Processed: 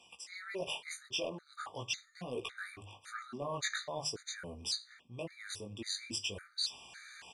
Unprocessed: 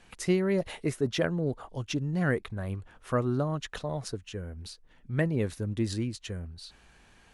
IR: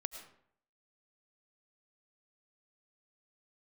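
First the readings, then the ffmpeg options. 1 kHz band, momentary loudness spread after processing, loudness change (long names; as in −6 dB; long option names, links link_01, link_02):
−5.0 dB, 10 LU, −8.5 dB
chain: -filter_complex "[0:a]flanger=delay=16:depth=5.2:speed=0.42,asplit=2[link_01][link_02];[link_02]adelay=100,highpass=300,lowpass=3400,asoftclip=type=hard:threshold=-24.5dB,volume=-27dB[link_03];[link_01][link_03]amix=inputs=2:normalize=0,areverse,acompressor=threshold=-41dB:ratio=5,areverse,highpass=frequency=95:width=0.5412,highpass=frequency=95:width=1.3066,equalizer=frequency=160:width=0.38:gain=-14.5,bandreject=frequency=50:width_type=h:width=6,bandreject=frequency=100:width_type=h:width=6,bandreject=frequency=150:width_type=h:width=6,dynaudnorm=framelen=310:gausssize=3:maxgain=5dB,flanger=delay=8.2:depth=9.7:regen=-74:speed=0.94:shape=triangular,asoftclip=type=tanh:threshold=-39dB,lowpass=6500,highshelf=frequency=3800:gain=10,afftfilt=real='re*gt(sin(2*PI*1.8*pts/sr)*(1-2*mod(floor(b*sr/1024/1200),2)),0)':imag='im*gt(sin(2*PI*1.8*pts/sr)*(1-2*mod(floor(b*sr/1024/1200),2)),0)':win_size=1024:overlap=0.75,volume=12.5dB"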